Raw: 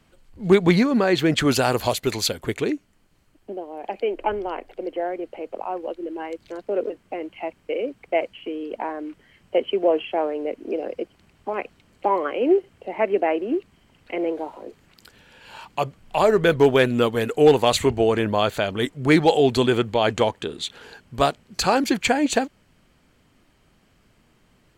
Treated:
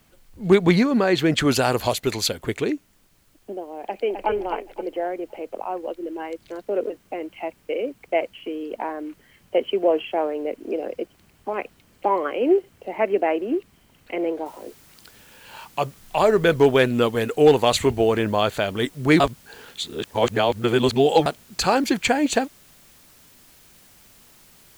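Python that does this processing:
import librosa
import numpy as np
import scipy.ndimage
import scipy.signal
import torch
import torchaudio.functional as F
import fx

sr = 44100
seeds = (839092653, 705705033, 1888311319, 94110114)

y = fx.echo_throw(x, sr, start_s=3.83, length_s=0.46, ms=260, feedback_pct=35, wet_db=-6.0)
y = fx.noise_floor_step(y, sr, seeds[0], at_s=14.46, before_db=-65, after_db=-53, tilt_db=0.0)
y = fx.edit(y, sr, fx.reverse_span(start_s=19.2, length_s=2.06), tone=tone)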